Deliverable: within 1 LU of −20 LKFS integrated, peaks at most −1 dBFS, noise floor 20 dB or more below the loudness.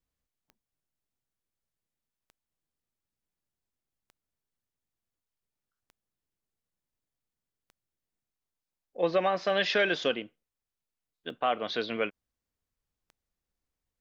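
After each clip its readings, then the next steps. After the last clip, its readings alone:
number of clicks 8; integrated loudness −29.0 LKFS; sample peak −14.0 dBFS; target loudness −20.0 LKFS
→ click removal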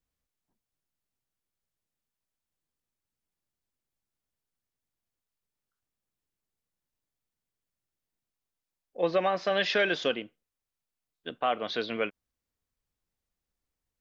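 number of clicks 0; integrated loudness −29.0 LKFS; sample peak −14.0 dBFS; target loudness −20.0 LKFS
→ level +9 dB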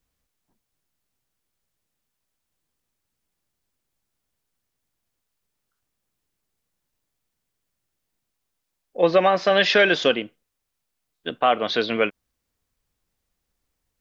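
integrated loudness −20.0 LKFS; sample peak −5.0 dBFS; background noise floor −80 dBFS

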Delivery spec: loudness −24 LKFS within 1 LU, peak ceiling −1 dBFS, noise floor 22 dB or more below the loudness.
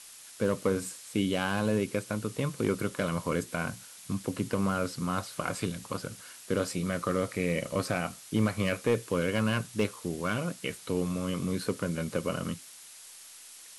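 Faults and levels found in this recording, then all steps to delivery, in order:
share of clipped samples 0.3%; peaks flattened at −18.0 dBFS; background noise floor −50 dBFS; target noise floor −54 dBFS; integrated loudness −31.5 LKFS; sample peak −18.0 dBFS; target loudness −24.0 LKFS
→ clipped peaks rebuilt −18 dBFS
noise reduction from a noise print 6 dB
level +7.5 dB

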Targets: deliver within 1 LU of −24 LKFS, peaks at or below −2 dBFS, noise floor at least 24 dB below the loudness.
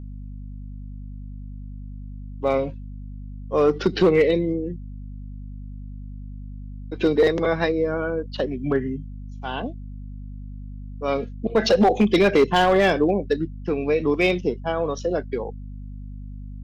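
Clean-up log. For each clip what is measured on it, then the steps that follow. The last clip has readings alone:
share of clipped samples 0.4%; peaks flattened at −10.5 dBFS; mains hum 50 Hz; hum harmonics up to 250 Hz; level of the hum −33 dBFS; integrated loudness −22.0 LKFS; sample peak −10.5 dBFS; target loudness −24.0 LKFS
→ clipped peaks rebuilt −10.5 dBFS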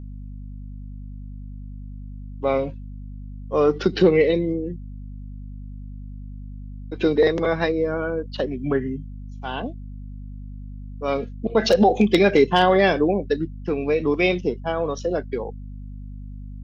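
share of clipped samples 0.0%; mains hum 50 Hz; hum harmonics up to 250 Hz; level of the hum −33 dBFS
→ hum removal 50 Hz, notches 5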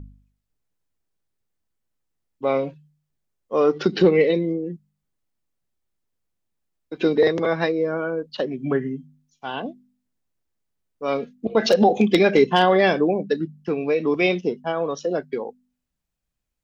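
mains hum none found; integrated loudness −21.5 LKFS; sample peak −2.0 dBFS; target loudness −24.0 LKFS
→ level −2.5 dB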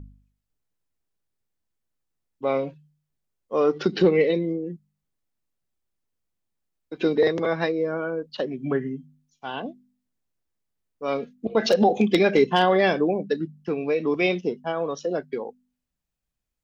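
integrated loudness −24.0 LKFS; sample peak −4.5 dBFS; background noise floor −82 dBFS

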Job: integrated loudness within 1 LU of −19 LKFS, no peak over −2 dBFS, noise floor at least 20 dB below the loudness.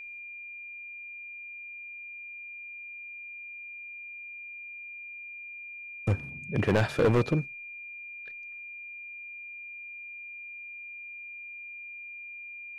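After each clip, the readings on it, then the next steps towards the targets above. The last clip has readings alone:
share of clipped samples 0.4%; peaks flattened at −18.5 dBFS; interfering tone 2,400 Hz; level of the tone −40 dBFS; integrated loudness −35.0 LKFS; sample peak −18.5 dBFS; target loudness −19.0 LKFS
→ clipped peaks rebuilt −18.5 dBFS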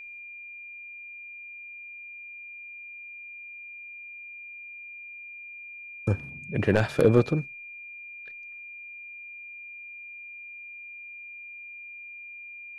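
share of clipped samples 0.0%; interfering tone 2,400 Hz; level of the tone −40 dBFS
→ notch filter 2,400 Hz, Q 30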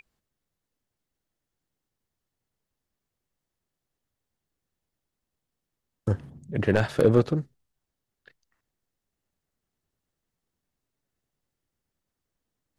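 interfering tone none found; integrated loudness −25.5 LKFS; sample peak −9.5 dBFS; target loudness −19.0 LKFS
→ level +6.5 dB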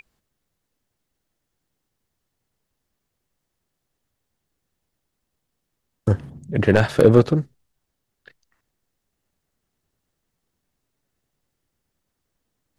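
integrated loudness −19.0 LKFS; sample peak −3.0 dBFS; background noise floor −79 dBFS

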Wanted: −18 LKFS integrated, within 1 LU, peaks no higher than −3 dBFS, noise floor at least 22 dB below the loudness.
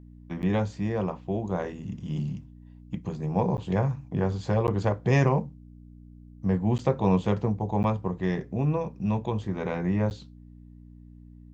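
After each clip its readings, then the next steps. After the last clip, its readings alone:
number of dropouts 6; longest dropout 9.8 ms; mains hum 60 Hz; hum harmonics up to 300 Hz; level of the hum −47 dBFS; integrated loudness −28.0 LKFS; sample peak −9.0 dBFS; target loudness −18.0 LKFS
→ repair the gap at 0:00.42/0:03.57/0:04.67/0:06.78/0:07.83/0:10.10, 9.8 ms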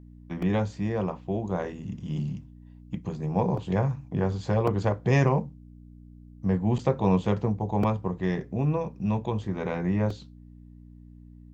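number of dropouts 0; mains hum 60 Hz; hum harmonics up to 300 Hz; level of the hum −47 dBFS
→ hum removal 60 Hz, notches 5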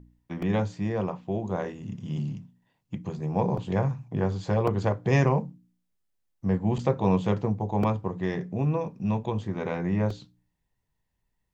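mains hum none found; integrated loudness −28.0 LKFS; sample peak −9.0 dBFS; target loudness −18.0 LKFS
→ level +10 dB
brickwall limiter −3 dBFS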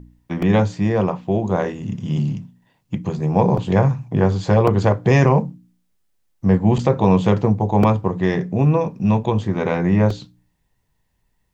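integrated loudness −18.5 LKFS; sample peak −3.0 dBFS; background noise floor −68 dBFS

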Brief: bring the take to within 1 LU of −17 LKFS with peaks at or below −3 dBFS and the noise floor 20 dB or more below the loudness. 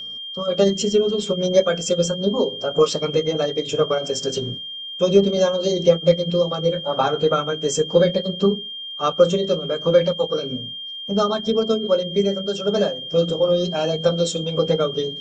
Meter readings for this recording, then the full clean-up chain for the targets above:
crackle rate 28 per second; interfering tone 3,200 Hz; level of the tone −30 dBFS; integrated loudness −20.5 LKFS; sample peak −3.0 dBFS; target loudness −17.0 LKFS
→ click removal
notch filter 3,200 Hz, Q 30
level +3.5 dB
brickwall limiter −3 dBFS

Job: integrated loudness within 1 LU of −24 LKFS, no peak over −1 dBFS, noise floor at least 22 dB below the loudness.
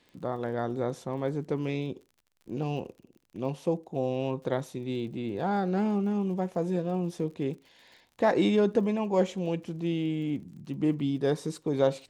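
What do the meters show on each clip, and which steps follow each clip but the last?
crackle rate 40 per second; integrated loudness −30.0 LKFS; sample peak −10.5 dBFS; target loudness −24.0 LKFS
→ click removal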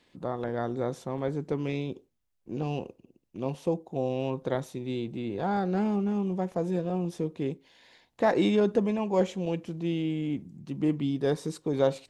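crackle rate 0 per second; integrated loudness −30.0 LKFS; sample peak −10.5 dBFS; target loudness −24.0 LKFS
→ level +6 dB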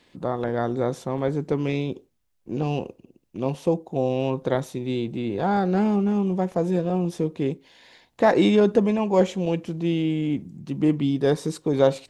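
integrated loudness −24.0 LKFS; sample peak −4.5 dBFS; background noise floor −67 dBFS

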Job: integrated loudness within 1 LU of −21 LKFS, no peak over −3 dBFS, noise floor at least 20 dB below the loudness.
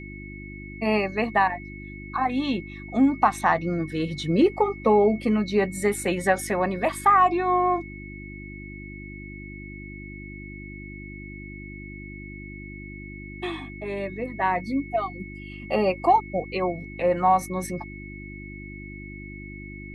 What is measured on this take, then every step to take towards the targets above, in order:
mains hum 50 Hz; hum harmonics up to 350 Hz; level of the hum −37 dBFS; interfering tone 2,200 Hz; level of the tone −42 dBFS; integrated loudness −24.0 LKFS; sample peak −6.5 dBFS; target loudness −21.0 LKFS
→ hum removal 50 Hz, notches 7
notch filter 2,200 Hz, Q 30
level +3 dB

